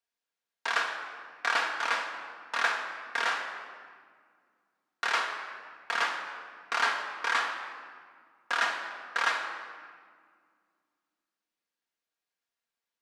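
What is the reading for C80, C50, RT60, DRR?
7.0 dB, 6.0 dB, 1.9 s, 0.5 dB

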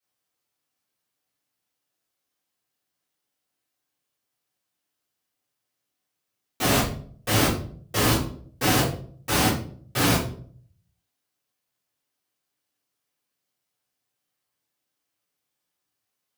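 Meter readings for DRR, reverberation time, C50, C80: -11.5 dB, 0.50 s, 5.5 dB, 11.0 dB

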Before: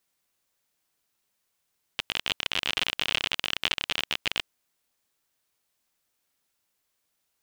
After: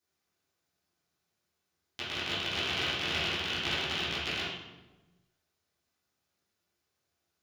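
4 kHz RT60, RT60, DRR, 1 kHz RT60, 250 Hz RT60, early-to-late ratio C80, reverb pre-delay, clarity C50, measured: 0.80 s, 1.1 s, -12.5 dB, 1.0 s, 1.5 s, 3.5 dB, 3 ms, -0.5 dB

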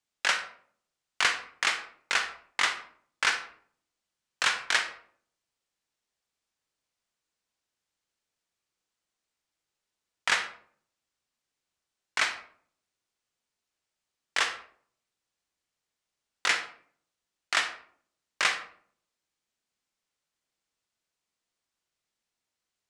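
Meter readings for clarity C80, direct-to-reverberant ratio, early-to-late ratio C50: 13.5 dB, 7.5 dB, 10.0 dB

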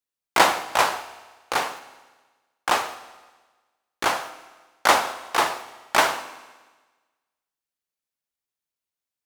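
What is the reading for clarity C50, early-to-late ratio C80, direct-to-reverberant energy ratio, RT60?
13.0 dB, 15.0 dB, 11.0 dB, 1.3 s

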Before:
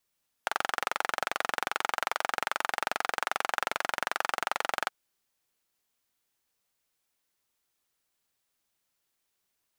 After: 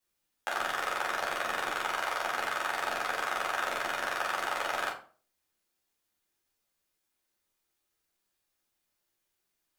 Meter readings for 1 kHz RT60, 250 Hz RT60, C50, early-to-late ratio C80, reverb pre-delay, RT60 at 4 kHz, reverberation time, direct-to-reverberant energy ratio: 0.40 s, 0.45 s, 7.5 dB, 12.5 dB, 9 ms, 0.30 s, 0.40 s, -5.5 dB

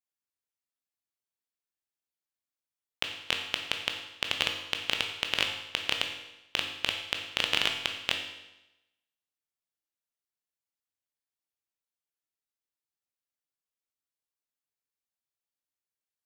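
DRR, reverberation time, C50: 3.0 dB, 0.95 s, 6.0 dB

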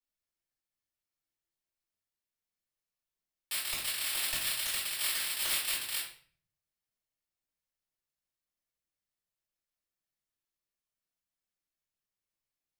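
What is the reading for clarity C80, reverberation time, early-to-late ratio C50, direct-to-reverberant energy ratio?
9.0 dB, 0.50 s, 4.0 dB, -9.5 dB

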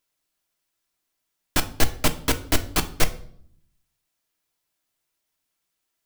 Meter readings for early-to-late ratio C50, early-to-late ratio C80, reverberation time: 15.5 dB, 19.5 dB, 0.60 s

